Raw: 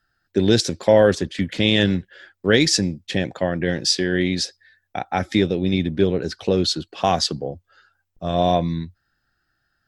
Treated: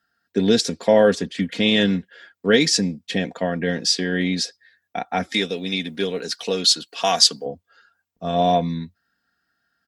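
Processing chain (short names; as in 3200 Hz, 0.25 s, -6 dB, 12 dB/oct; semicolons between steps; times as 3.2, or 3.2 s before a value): HPF 120 Hz 12 dB/oct; comb 4.3 ms, depth 59%; 5.34–7.46 tilt +3.5 dB/oct; gain -1.5 dB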